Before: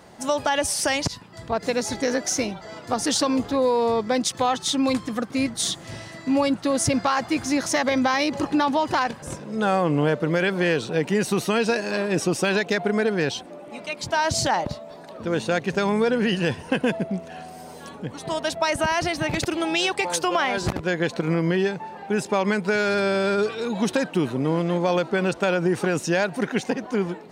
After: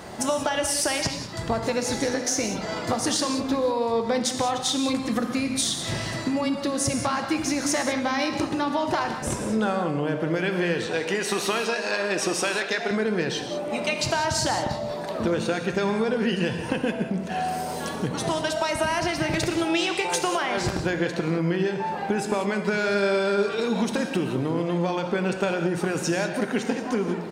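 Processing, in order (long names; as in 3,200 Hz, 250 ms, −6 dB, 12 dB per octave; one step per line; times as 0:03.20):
0:10.86–0:12.91: meter weighting curve A
downward compressor 10 to 1, threshold −31 dBFS, peak gain reduction 15 dB
slap from a distant wall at 32 metres, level −17 dB
reverb whose tail is shaped and stops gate 220 ms flat, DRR 5 dB
level +8.5 dB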